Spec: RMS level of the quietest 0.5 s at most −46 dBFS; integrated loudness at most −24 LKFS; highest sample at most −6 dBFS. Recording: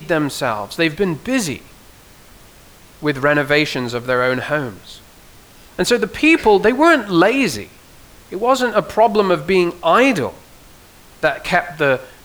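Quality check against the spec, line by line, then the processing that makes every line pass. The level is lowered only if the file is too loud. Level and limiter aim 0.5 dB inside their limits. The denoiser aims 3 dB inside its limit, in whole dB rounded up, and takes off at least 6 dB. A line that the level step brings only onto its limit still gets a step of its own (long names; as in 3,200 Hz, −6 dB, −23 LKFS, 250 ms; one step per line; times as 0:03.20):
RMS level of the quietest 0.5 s −44 dBFS: out of spec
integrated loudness −16.5 LKFS: out of spec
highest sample −2.5 dBFS: out of spec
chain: level −8 dB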